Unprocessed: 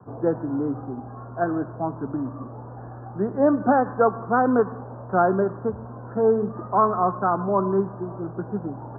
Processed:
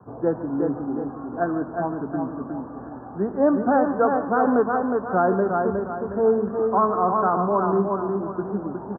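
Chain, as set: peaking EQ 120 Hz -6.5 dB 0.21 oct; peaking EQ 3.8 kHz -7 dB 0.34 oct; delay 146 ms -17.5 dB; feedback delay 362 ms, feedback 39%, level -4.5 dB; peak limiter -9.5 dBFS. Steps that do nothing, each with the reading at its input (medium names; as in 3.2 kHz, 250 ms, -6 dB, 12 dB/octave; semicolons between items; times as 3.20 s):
peaking EQ 3.8 kHz: input has nothing above 1.8 kHz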